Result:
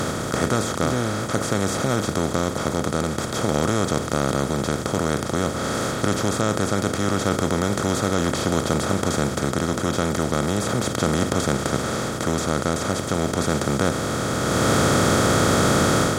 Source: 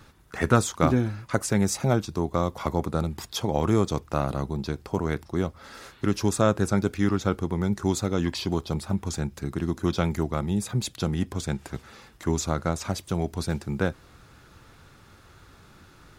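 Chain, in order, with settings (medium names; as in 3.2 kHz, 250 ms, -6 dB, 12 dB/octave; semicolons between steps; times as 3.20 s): spectral levelling over time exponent 0.2; level rider; trim -4.5 dB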